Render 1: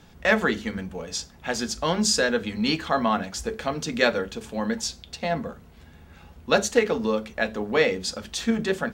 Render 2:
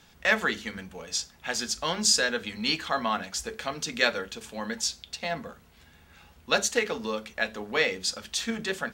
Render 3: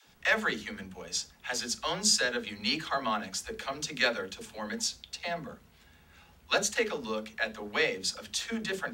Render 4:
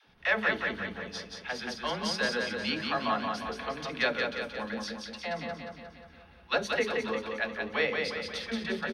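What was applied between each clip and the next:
tilt shelving filter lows −5.5 dB; level −4 dB
all-pass dispersion lows, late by 73 ms, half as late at 330 Hz; level −3 dB
moving average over 6 samples; on a send: repeating echo 178 ms, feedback 55%, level −4 dB

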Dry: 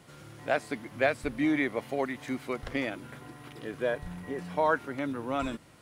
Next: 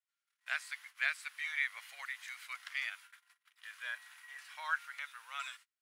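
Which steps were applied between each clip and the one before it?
noise gate −43 dBFS, range −35 dB
inverse Chebyshev high-pass filter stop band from 320 Hz, stop band 70 dB
level −1 dB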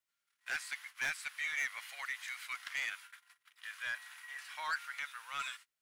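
soft clipping −34 dBFS, distortion −7 dB
level +4 dB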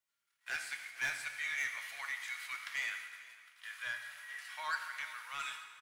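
repeating echo 447 ms, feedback 48%, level −19 dB
on a send at −4 dB: convolution reverb RT60 1.5 s, pre-delay 4 ms
on the sum: level −1.5 dB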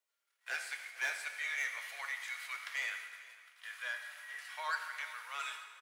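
four-pole ladder high-pass 400 Hz, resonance 45%
level +8.5 dB

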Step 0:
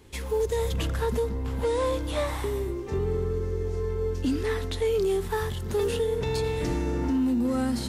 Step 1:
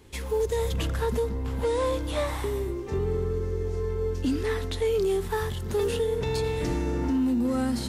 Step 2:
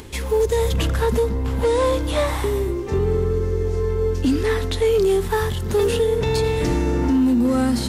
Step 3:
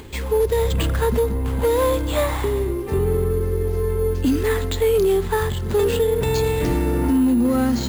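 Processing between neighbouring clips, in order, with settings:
no processing that can be heard
upward compression, threshold −40 dBFS; hard clipping −19.5 dBFS, distortion −31 dB; level +7.5 dB
bad sample-rate conversion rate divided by 4×, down filtered, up hold

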